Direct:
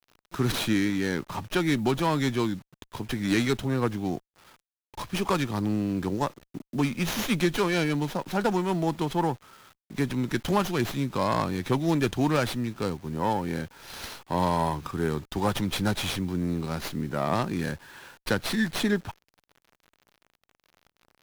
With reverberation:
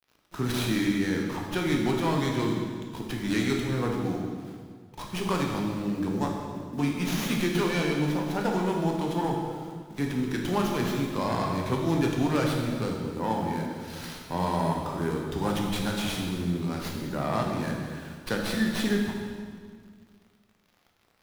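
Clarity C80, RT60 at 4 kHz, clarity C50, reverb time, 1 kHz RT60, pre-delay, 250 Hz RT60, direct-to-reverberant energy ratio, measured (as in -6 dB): 4.0 dB, 1.6 s, 2.0 dB, 1.8 s, 1.7 s, 13 ms, 2.2 s, 0.0 dB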